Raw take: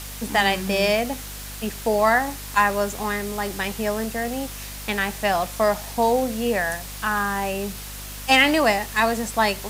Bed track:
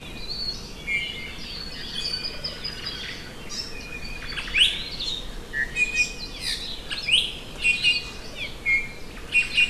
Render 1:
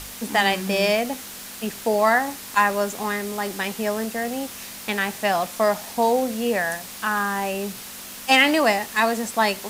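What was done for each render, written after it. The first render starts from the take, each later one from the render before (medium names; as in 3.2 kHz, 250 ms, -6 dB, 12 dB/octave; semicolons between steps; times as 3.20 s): de-hum 50 Hz, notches 3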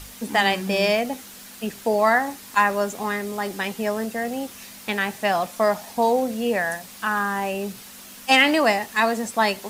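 noise reduction 6 dB, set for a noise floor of -38 dBFS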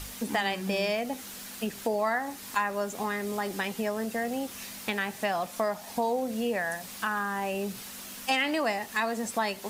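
compression 2.5:1, threshold -29 dBFS, peak gain reduction 11.5 dB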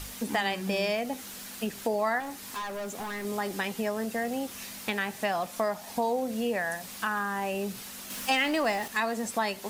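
2.20–3.25 s: overload inside the chain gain 32.5 dB; 8.10–8.88 s: jump at every zero crossing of -38 dBFS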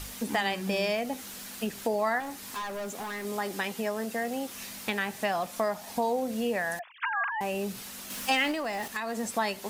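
2.93–4.57 s: bass shelf 130 Hz -8 dB; 6.79–7.41 s: formants replaced by sine waves; 8.51–9.19 s: compression, threshold -28 dBFS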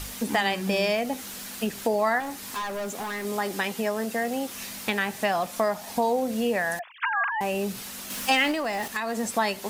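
trim +4 dB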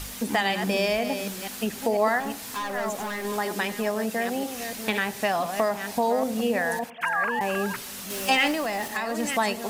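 chunks repeated in reverse 493 ms, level -8 dB; filtered feedback delay 96 ms, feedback 57%, low-pass 1.2 kHz, level -18.5 dB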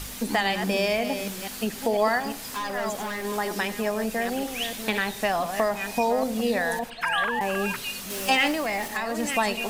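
add bed track -14 dB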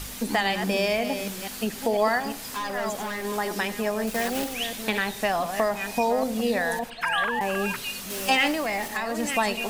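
4.07–4.55 s: block-companded coder 3-bit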